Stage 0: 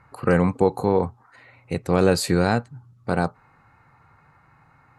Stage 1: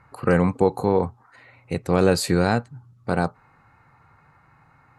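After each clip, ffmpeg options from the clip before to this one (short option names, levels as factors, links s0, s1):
-af anull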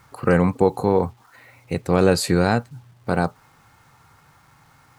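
-af "acrusher=bits=9:mix=0:aa=0.000001,volume=1.19"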